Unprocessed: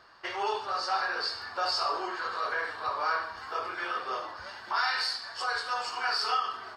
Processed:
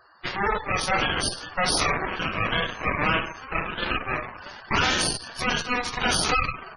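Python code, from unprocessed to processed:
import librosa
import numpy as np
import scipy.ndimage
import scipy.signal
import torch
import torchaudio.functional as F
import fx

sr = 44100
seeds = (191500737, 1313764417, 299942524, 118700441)

y = fx.dmg_tone(x, sr, hz=6300.0, level_db=-54.0, at=(2.35, 3.4), fade=0.02)
y = fx.cheby_harmonics(y, sr, harmonics=(2, 3, 4, 8), levels_db=(-12, -17, -7, -20), full_scale_db=-16.5)
y = fx.spec_gate(y, sr, threshold_db=-15, keep='strong')
y = F.gain(torch.from_numpy(y), 6.0).numpy()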